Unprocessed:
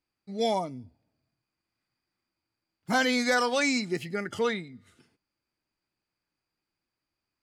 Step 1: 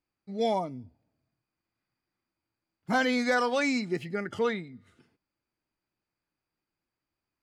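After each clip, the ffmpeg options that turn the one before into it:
-af "highshelf=f=3.8k:g=-10"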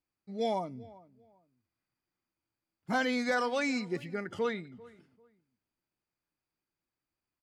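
-filter_complex "[0:a]asplit=2[a][b];[b]adelay=394,lowpass=f=1.6k:p=1,volume=-20.5dB,asplit=2[c][d];[d]adelay=394,lowpass=f=1.6k:p=1,volume=0.26[e];[a][c][e]amix=inputs=3:normalize=0,volume=-4dB"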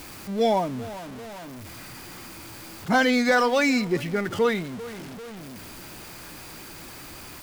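-af "aeval=exprs='val(0)+0.5*0.0075*sgn(val(0))':c=same,volume=9dB"

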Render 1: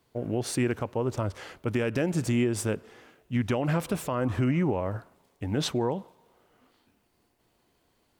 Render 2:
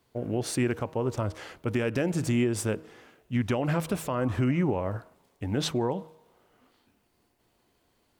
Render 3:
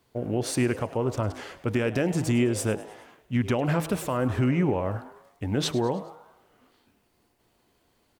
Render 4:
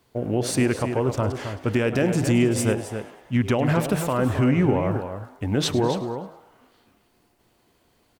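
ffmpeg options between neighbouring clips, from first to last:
-af "bandreject=f=158.3:t=h:w=4,bandreject=f=316.6:t=h:w=4,bandreject=f=474.9:t=h:w=4,bandreject=f=633.2:t=h:w=4,bandreject=f=791.5:t=h:w=4,bandreject=f=949.8:t=h:w=4,bandreject=f=1.1081k:t=h:w=4"
-filter_complex "[0:a]asplit=5[a][b][c][d][e];[b]adelay=104,afreqshift=150,volume=-17dB[f];[c]adelay=208,afreqshift=300,volume=-23dB[g];[d]adelay=312,afreqshift=450,volume=-29dB[h];[e]adelay=416,afreqshift=600,volume=-35.1dB[i];[a][f][g][h][i]amix=inputs=5:normalize=0,volume=2dB"
-filter_complex "[0:a]asplit=2[a][b];[b]adelay=268.2,volume=-8dB,highshelf=f=4k:g=-6.04[c];[a][c]amix=inputs=2:normalize=0,volume=3.5dB"

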